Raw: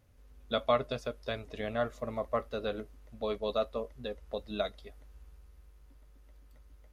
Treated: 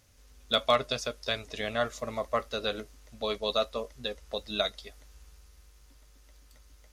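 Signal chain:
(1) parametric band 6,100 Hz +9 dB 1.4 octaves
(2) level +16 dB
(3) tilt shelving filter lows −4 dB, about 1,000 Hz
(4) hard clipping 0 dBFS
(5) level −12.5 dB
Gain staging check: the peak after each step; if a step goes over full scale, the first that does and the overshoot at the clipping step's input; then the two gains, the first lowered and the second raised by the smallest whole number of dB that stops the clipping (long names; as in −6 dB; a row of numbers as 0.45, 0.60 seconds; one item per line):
−13.0, +3.0, +3.0, 0.0, −12.5 dBFS
step 2, 3.0 dB
step 2 +13 dB, step 5 −9.5 dB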